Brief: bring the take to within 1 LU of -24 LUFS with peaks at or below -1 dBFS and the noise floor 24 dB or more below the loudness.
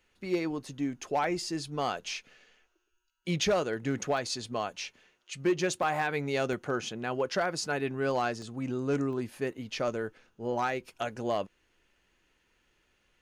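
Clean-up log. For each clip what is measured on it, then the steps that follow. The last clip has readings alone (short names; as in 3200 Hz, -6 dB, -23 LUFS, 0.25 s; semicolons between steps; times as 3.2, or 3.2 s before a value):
clipped 0.2%; flat tops at -20.5 dBFS; dropouts 6; longest dropout 1.5 ms; loudness -32.0 LUFS; peak -20.5 dBFS; loudness target -24.0 LUFS
-> clip repair -20.5 dBFS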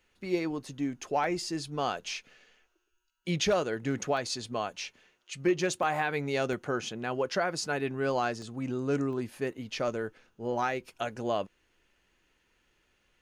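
clipped 0.0%; dropouts 6; longest dropout 1.5 ms
-> interpolate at 1.24/4.17/5.83/6.53/8.42/9.13, 1.5 ms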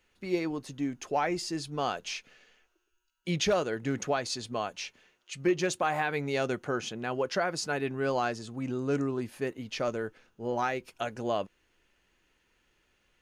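dropouts 0; loudness -32.0 LUFS; peak -16.5 dBFS; loudness target -24.0 LUFS
-> gain +8 dB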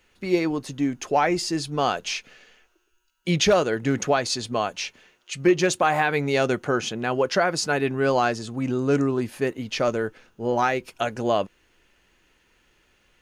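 loudness -24.0 LUFS; peak -8.5 dBFS; noise floor -66 dBFS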